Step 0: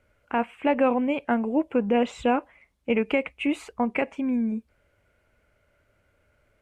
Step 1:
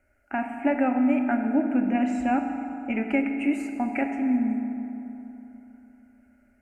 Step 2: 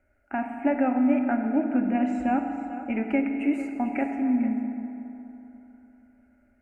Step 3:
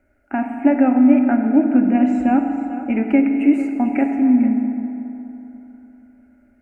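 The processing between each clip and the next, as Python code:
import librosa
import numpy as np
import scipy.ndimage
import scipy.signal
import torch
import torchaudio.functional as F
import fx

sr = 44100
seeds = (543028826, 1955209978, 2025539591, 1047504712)

y1 = fx.fixed_phaser(x, sr, hz=710.0, stages=8)
y1 = fx.rev_fdn(y1, sr, rt60_s=3.3, lf_ratio=1.0, hf_ratio=0.5, size_ms=22.0, drr_db=4.0)
y2 = fx.high_shelf(y1, sr, hz=2500.0, db=-8.5)
y2 = y2 + 10.0 ** (-13.5 / 20.0) * np.pad(y2, (int(447 * sr / 1000.0), 0))[:len(y2)]
y3 = fx.peak_eq(y2, sr, hz=290.0, db=6.0, octaves=1.0)
y3 = y3 * librosa.db_to_amplitude(4.5)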